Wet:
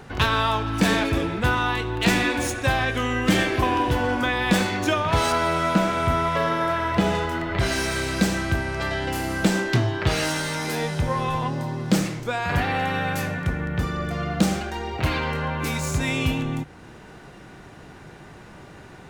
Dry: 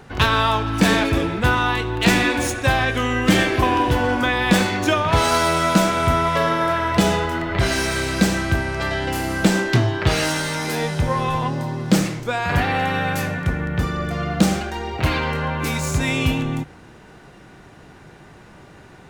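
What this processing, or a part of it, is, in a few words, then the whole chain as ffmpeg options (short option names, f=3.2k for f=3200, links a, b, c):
parallel compression: -filter_complex "[0:a]asplit=2[a][b];[b]acompressor=threshold=-35dB:ratio=6,volume=-1.5dB[c];[a][c]amix=inputs=2:normalize=0,asettb=1/sr,asplit=3[d][e][f];[d]atrim=end=5.324[g];[e]atrim=start=5.32:end=7.15,asetpts=PTS-STARTPTS,afade=t=in:d=0.004:c=qsin,afade=t=out:st=1.826:d=0.004:c=qsin,acrossover=split=3400[h][i];[i]acompressor=threshold=-36dB:ratio=4:attack=1:release=60[j];[h][j]amix=inputs=2:normalize=0[k];[f]atrim=start=7.146[l];[g][k]acrossfade=d=0.004:c1=hsin:c2=qsin[m];[m][l]acrossfade=d=0.004:c1=qsin:c2=hsin,volume=-4.5dB"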